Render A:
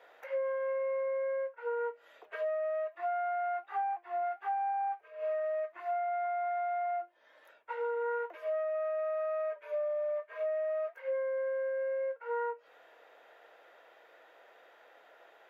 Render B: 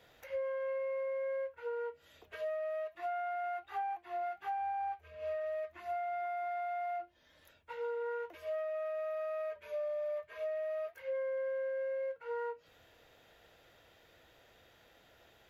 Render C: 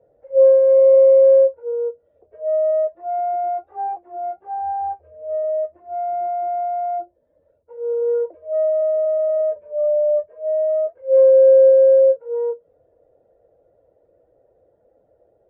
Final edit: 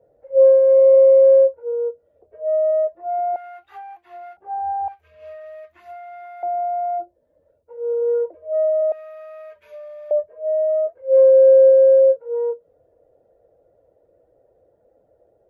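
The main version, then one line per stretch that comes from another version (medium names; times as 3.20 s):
C
3.36–4.37 s: from B
4.88–6.43 s: from B
8.92–10.11 s: from B
not used: A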